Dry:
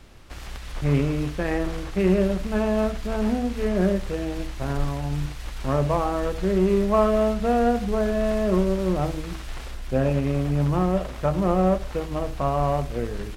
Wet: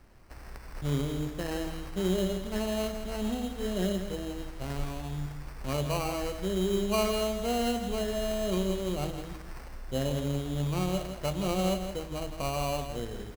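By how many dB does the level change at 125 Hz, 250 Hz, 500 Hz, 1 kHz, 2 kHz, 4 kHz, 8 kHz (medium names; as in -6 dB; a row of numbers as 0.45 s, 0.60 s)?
-8.0 dB, -8.5 dB, -8.0 dB, -9.0 dB, -6.5 dB, +2.5 dB, +3.0 dB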